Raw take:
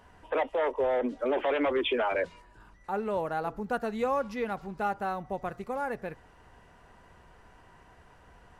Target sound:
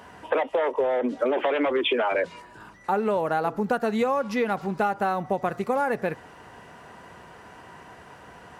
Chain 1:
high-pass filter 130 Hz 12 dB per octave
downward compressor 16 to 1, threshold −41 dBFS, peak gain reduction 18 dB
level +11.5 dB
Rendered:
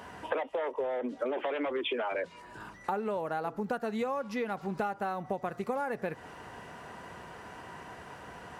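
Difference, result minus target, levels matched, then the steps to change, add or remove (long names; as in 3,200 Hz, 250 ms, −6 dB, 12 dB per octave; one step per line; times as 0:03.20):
downward compressor: peak gain reduction +9 dB
change: downward compressor 16 to 1, threshold −31.5 dBFS, peak gain reduction 9 dB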